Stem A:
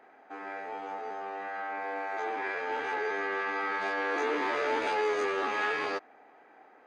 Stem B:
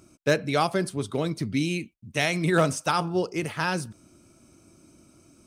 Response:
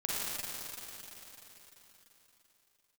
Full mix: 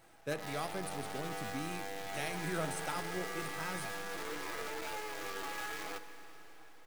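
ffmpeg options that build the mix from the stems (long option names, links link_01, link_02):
-filter_complex "[0:a]aecho=1:1:6.1:0.68,acompressor=threshold=-37dB:ratio=4,acrusher=bits=7:dc=4:mix=0:aa=0.000001,volume=-5.5dB,asplit=2[link_01][link_02];[link_02]volume=-15.5dB[link_03];[1:a]highshelf=frequency=7600:width_type=q:width=1.5:gain=7,volume=-17dB,asplit=2[link_04][link_05];[link_05]volume=-15.5dB[link_06];[2:a]atrim=start_sample=2205[link_07];[link_03][link_06]amix=inputs=2:normalize=0[link_08];[link_08][link_07]afir=irnorm=-1:irlink=0[link_09];[link_01][link_04][link_09]amix=inputs=3:normalize=0"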